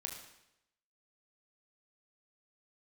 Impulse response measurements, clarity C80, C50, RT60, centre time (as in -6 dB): 7.0 dB, 4.5 dB, 0.85 s, 35 ms